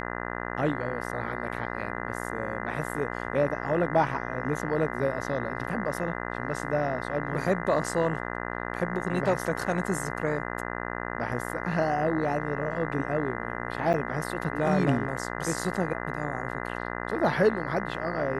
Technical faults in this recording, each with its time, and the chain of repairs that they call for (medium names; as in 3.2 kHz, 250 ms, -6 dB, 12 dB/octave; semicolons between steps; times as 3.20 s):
buzz 60 Hz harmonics 34 -34 dBFS
13.93–13.94 s: dropout 8.9 ms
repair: de-hum 60 Hz, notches 34; interpolate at 13.93 s, 8.9 ms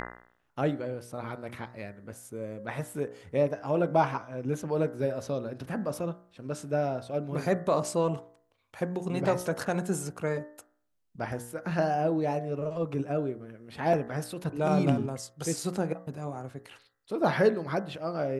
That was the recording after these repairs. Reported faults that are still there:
nothing left